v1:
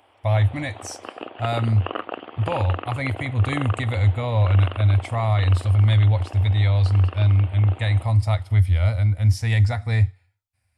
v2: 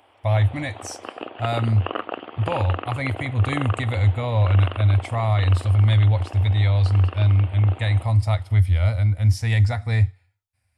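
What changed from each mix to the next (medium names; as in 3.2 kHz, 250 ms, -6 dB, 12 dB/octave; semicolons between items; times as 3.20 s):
reverb: on, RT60 1.0 s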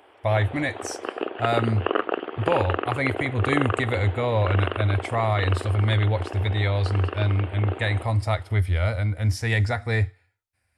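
master: add fifteen-band graphic EQ 100 Hz -6 dB, 400 Hz +10 dB, 1.6 kHz +6 dB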